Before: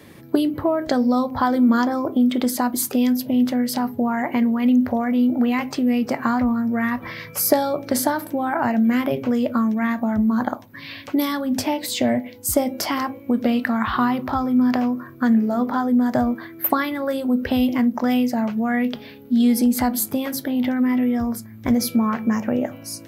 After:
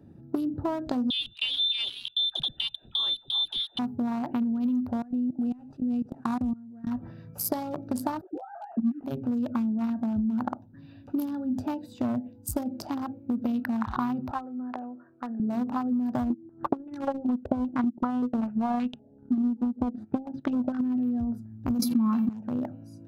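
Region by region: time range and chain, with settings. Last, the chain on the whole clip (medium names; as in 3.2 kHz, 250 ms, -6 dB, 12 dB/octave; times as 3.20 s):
1.10–3.79 s: frequency inversion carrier 3.8 kHz + phase dispersion lows, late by 89 ms, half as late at 530 Hz
5.02–6.87 s: CVSD coder 64 kbps + level held to a coarse grid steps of 20 dB
8.21–9.04 s: formants replaced by sine waves + bass shelf 500 Hz +9 dB + detune thickener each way 45 cents
14.31–15.40 s: three-band isolator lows -22 dB, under 390 Hz, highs -22 dB, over 2.5 kHz + tape noise reduction on one side only encoder only
16.30–20.81 s: transient shaper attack +10 dB, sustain -12 dB + step-sequenced low-pass 5.2 Hz 340–2800 Hz
21.79–22.29 s: peaking EQ 79 Hz -11.5 dB 1.2 oct + small resonant body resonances 240/2700/4000 Hz, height 18 dB, ringing for 70 ms + decay stretcher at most 25 dB/s
whole clip: local Wiener filter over 41 samples; graphic EQ 500/1000/2000 Hz -10/+7/-11 dB; compression, threshold -22 dBFS; trim -2 dB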